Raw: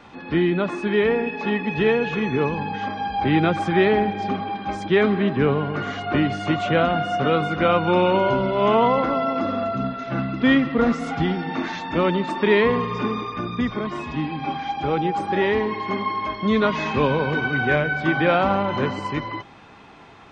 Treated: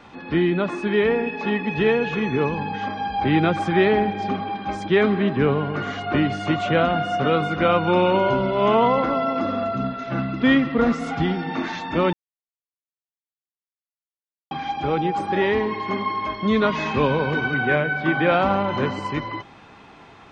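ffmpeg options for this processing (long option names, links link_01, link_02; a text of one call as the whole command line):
ffmpeg -i in.wav -filter_complex "[0:a]asettb=1/sr,asplit=3[link_01][link_02][link_03];[link_01]atrim=end=17.544[link_04];[link_02]atrim=start=17.54:end=18.32,asetpts=PTS-STARTPTS,afade=type=in:duration=0.004:curve=qsin,afade=type=out:start_time=0.776:duration=0.004:curve=qsin,highpass=110,lowpass=4100[link_05];[link_03]atrim=start=18.316[link_06];[link_04][link_05]acrossfade=duration=0.004:curve1=hsin:curve2=qsin[link_07];[link_07][link_06]acrossfade=duration=0.004:curve1=qsin:curve2=hsin,asplit=3[link_08][link_09][link_10];[link_08]atrim=end=12.13,asetpts=PTS-STARTPTS,afade=type=out:start_time=12.126:duration=0.004:curve=hsin[link_11];[link_09]atrim=start=12.13:end=14.51,asetpts=PTS-STARTPTS,volume=0[link_12];[link_10]atrim=start=14.51,asetpts=PTS-STARTPTS,afade=type=in:duration=0.004:curve=hsin[link_13];[link_11][link_12][link_13]concat=n=3:v=0:a=1" out.wav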